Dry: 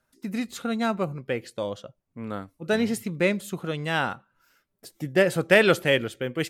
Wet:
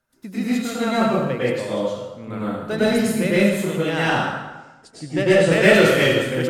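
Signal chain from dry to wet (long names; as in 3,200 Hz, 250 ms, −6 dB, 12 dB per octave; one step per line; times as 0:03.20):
0:03.91–0:05.69: Butterworth low-pass 8,800 Hz 36 dB per octave
in parallel at −7 dB: wave folding −18.5 dBFS
on the sum: dense smooth reverb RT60 1.1 s, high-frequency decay 0.8×, pre-delay 90 ms, DRR −9.5 dB
level −5.5 dB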